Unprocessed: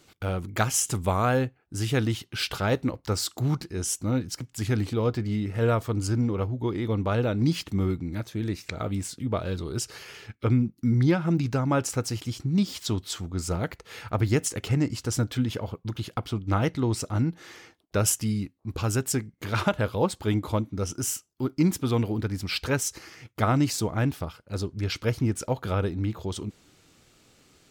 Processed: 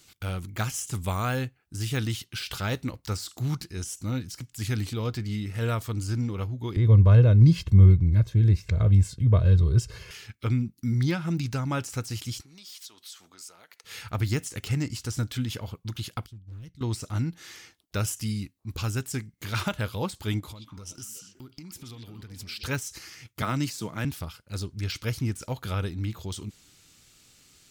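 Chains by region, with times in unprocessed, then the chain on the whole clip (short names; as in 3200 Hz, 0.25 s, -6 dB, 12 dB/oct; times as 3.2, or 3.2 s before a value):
6.76–10.11 tilt -4 dB/oct + comb 1.9 ms, depth 60%
12.41–13.84 HPF 570 Hz + notch 7400 Hz, Q 15 + compressor 8:1, threshold -45 dBFS
16.26–16.81 passive tone stack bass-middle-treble 10-0-1 + hard clip -36 dBFS
20.4–22.64 compressor 12:1, threshold -36 dBFS + delay with a stepping band-pass 0.123 s, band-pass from 3500 Hz, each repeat -1.4 oct, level -1.5 dB
23.42–24.05 HPF 130 Hz 24 dB/oct + notch 740 Hz, Q 10
whole clip: bell 510 Hz -8.5 dB 2.6 oct; de-esser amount 90%; high shelf 3400 Hz +7 dB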